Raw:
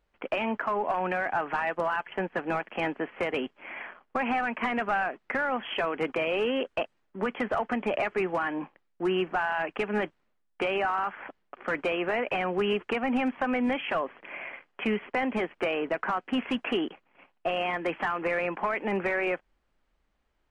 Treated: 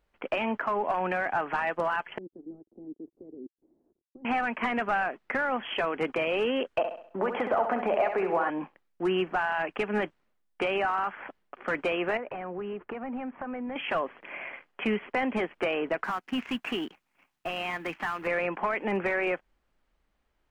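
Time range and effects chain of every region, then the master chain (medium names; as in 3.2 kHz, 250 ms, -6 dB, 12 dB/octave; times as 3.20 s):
2.18–4.25 s: level held to a coarse grid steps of 12 dB + small samples zeroed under -52 dBFS + four-pole ladder low-pass 380 Hz, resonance 60%
6.78–8.50 s: compression 3:1, threshold -37 dBFS + peaking EQ 690 Hz +13.5 dB 2.5 oct + flutter echo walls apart 11.3 m, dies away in 0.54 s
12.17–13.76 s: low-pass 1.5 kHz + compression 3:1, threshold -35 dBFS
16.04–18.27 s: companding laws mixed up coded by A + peaking EQ 520 Hz -7.5 dB 1.1 oct
whole clip: none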